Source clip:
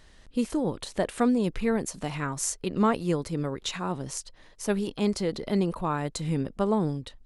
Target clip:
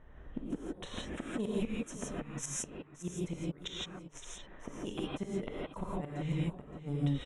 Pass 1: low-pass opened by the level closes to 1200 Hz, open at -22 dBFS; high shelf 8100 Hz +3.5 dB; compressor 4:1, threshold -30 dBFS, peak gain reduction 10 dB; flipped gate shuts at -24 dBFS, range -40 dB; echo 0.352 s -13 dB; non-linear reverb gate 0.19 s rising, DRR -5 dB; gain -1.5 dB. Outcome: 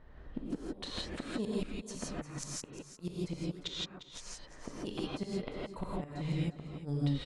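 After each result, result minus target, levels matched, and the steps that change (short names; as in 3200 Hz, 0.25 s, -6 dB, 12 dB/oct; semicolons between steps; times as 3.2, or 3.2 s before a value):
echo 0.217 s early; 4000 Hz band +3.5 dB
change: echo 0.569 s -13 dB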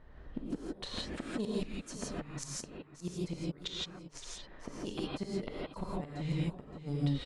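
4000 Hz band +3.5 dB
add after low-pass opened by the level: Butterworth band-stop 4600 Hz, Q 2.2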